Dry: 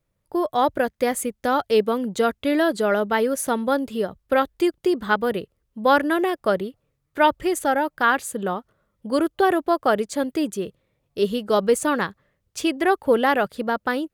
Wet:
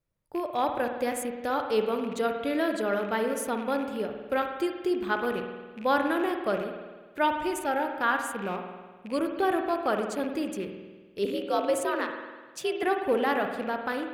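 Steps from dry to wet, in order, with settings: rattling part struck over -35 dBFS, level -27 dBFS; 11.25–12.83 frequency shift +73 Hz; spring tank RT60 1.4 s, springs 50 ms, chirp 65 ms, DRR 4.5 dB; gain -8 dB

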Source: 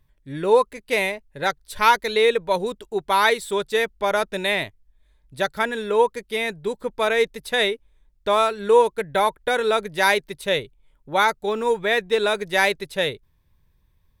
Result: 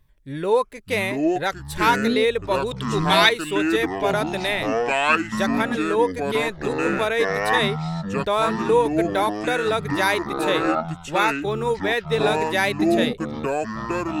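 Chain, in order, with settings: 2.71–3.29 weighting filter D; in parallel at +0.5 dB: compressor, threshold -31 dBFS, peak gain reduction 21.5 dB; on the sum: echoes that change speed 0.501 s, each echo -6 st, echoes 3; gain -4 dB

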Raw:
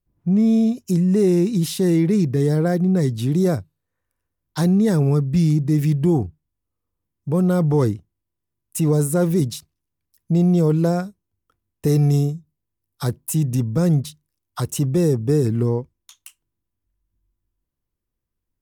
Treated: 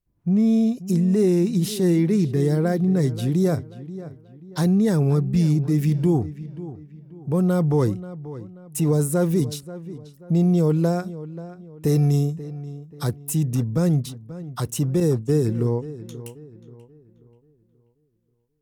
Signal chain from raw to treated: 15–15.66 expander -18 dBFS; darkening echo 0.534 s, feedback 38%, low-pass 2800 Hz, level -15 dB; gain -2 dB

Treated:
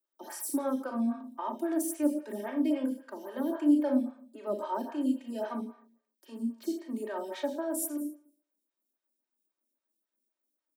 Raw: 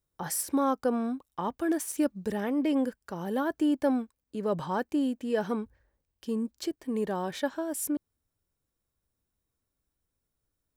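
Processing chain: steep high-pass 210 Hz 96 dB/oct; high shelf 11000 Hz +7 dB; comb 3.2 ms, depth 94%; Schroeder reverb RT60 0.56 s, combs from 27 ms, DRR 2.5 dB; photocell phaser 3.7 Hz; gain -6 dB

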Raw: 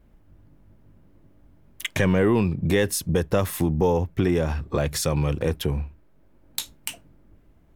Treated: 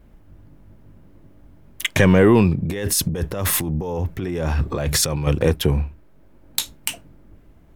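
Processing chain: 2.62–5.27 negative-ratio compressor -29 dBFS, ratio -1; gain +6.5 dB

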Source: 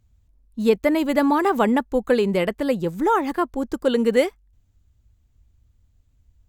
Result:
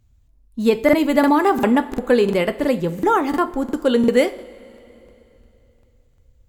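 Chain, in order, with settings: two-slope reverb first 0.38 s, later 3.2 s, from -18 dB, DRR 9.5 dB; crackling interface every 0.35 s, samples 2048, repeat, from 0.84; gain +2.5 dB

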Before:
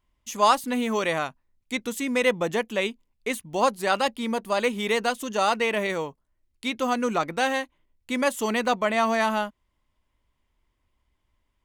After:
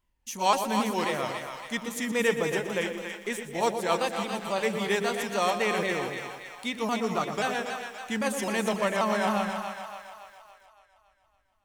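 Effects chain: repeated pitch sweeps -3 st, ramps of 0.265 s; high shelf 7000 Hz +5.5 dB; split-band echo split 650 Hz, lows 0.105 s, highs 0.281 s, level -6 dB; lo-fi delay 0.12 s, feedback 55%, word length 8-bit, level -11.5 dB; gain -3.5 dB

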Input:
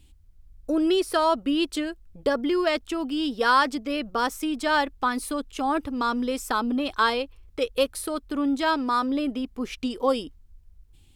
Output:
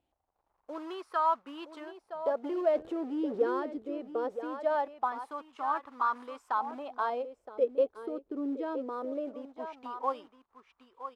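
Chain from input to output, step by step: 2.44–3.6 zero-crossing step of -25.5 dBFS; short-mantissa float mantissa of 2-bit; on a send: echo 0.968 s -11 dB; on the sum: wah 0.21 Hz 410–1100 Hz, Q 3.5

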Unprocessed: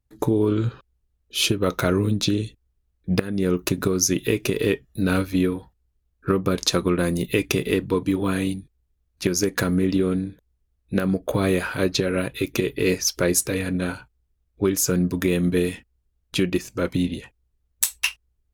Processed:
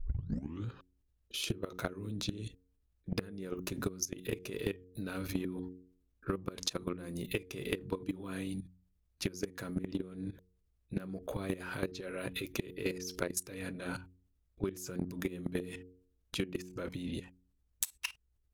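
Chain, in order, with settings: tape start at the beginning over 0.66 s; level quantiser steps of 19 dB; de-hum 91.15 Hz, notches 5; compressor 10:1, threshold -33 dBFS, peak gain reduction 17 dB; gain +1 dB

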